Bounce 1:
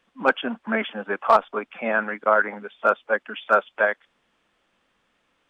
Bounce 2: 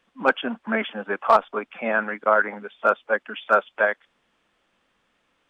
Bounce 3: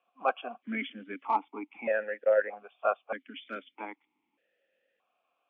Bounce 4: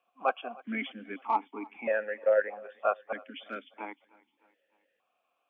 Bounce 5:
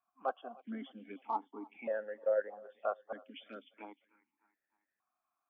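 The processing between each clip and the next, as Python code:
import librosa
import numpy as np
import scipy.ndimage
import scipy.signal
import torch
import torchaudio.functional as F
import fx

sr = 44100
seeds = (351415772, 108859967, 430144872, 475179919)

y1 = x
y2 = fx.vowel_held(y1, sr, hz=1.6)
y2 = y2 * librosa.db_to_amplitude(2.5)
y3 = fx.echo_feedback(y2, sr, ms=306, feedback_pct=51, wet_db=-23.5)
y4 = fx.env_phaser(y3, sr, low_hz=500.0, high_hz=2400.0, full_db=-34.0)
y4 = y4 * librosa.db_to_amplitude(-6.0)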